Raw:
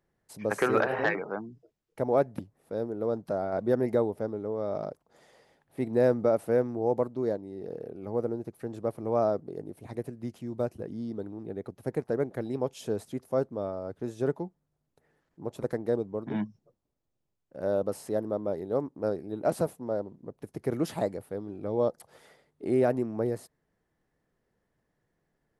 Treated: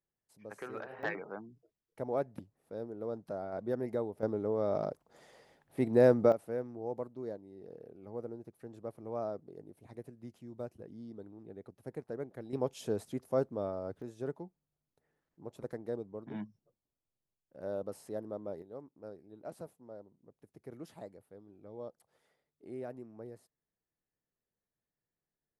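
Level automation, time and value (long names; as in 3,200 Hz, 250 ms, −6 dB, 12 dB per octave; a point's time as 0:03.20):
−18 dB
from 0:01.03 −9 dB
from 0:04.23 0 dB
from 0:06.32 −11.5 dB
from 0:12.53 −3 dB
from 0:14.02 −10 dB
from 0:18.62 −18 dB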